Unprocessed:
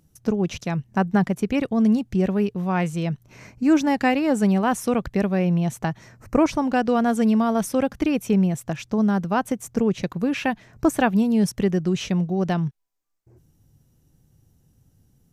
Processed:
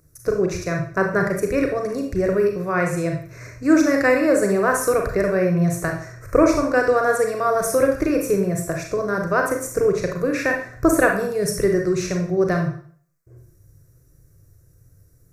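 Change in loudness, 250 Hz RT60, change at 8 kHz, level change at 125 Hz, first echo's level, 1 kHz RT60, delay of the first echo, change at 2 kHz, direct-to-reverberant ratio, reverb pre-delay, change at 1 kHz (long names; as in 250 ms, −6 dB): +2.0 dB, 0.50 s, +7.0 dB, −1.0 dB, no echo audible, 0.50 s, no echo audible, +7.0 dB, 2.0 dB, 32 ms, +1.5 dB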